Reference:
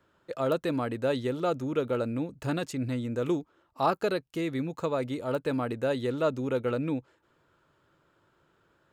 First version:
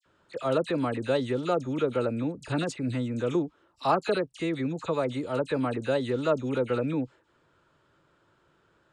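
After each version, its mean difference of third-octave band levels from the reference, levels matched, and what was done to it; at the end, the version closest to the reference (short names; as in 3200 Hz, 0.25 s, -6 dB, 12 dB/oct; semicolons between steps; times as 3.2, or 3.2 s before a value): 7.0 dB: Chebyshev low-pass 9300 Hz, order 4; dispersion lows, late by 57 ms, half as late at 2100 Hz; gain +2.5 dB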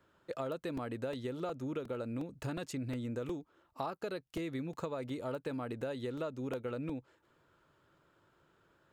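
2.5 dB: compressor 10:1, threshold -33 dBFS, peak gain reduction 13.5 dB; crackling interface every 0.36 s, samples 128, repeat, from 0.77; gain -2 dB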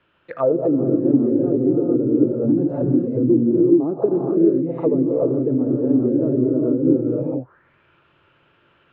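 12.5 dB: non-linear reverb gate 0.46 s rising, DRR -4 dB; envelope low-pass 330–2800 Hz down, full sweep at -21.5 dBFS; gain +1.5 dB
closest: second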